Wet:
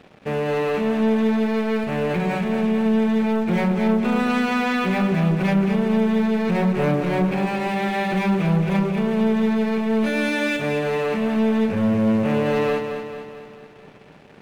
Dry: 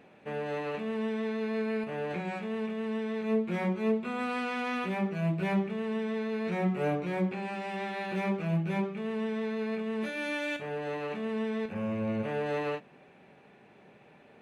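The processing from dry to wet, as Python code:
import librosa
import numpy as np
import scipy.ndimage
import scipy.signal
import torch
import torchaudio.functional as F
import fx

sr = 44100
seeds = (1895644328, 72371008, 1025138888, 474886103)

p1 = fx.low_shelf(x, sr, hz=200.0, db=8.0)
p2 = fx.leveller(p1, sr, passes=3)
y = p2 + fx.echo_feedback(p2, sr, ms=222, feedback_pct=54, wet_db=-7.5, dry=0)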